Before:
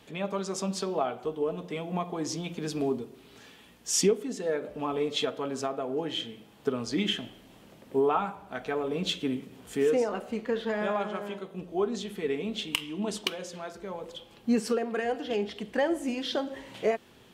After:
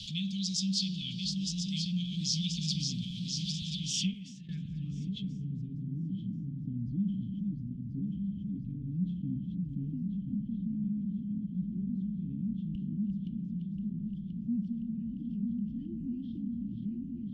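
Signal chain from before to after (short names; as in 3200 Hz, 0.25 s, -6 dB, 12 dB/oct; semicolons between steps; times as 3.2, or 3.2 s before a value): regenerating reverse delay 0.517 s, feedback 76%, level -7 dB; Chebyshev band-stop 190–3100 Hz, order 4; 3.93–4.49 gate with hold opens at -19 dBFS; low-pass sweep 4800 Hz -> 310 Hz, 3.54–5.94; fast leveller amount 50%; gain -1 dB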